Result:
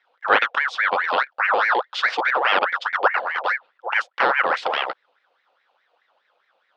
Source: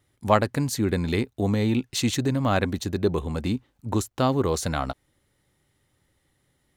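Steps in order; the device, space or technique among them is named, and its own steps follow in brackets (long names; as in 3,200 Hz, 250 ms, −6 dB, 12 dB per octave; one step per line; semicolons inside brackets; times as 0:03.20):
voice changer toy (ring modulator whose carrier an LFO sweeps 1,300 Hz, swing 55%, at 4.8 Hz; loudspeaker in its box 510–4,100 Hz, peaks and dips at 520 Hz +7 dB, 790 Hz +3 dB, 1,400 Hz +4 dB, 2,100 Hz −3 dB, 3,400 Hz +4 dB)
level +5 dB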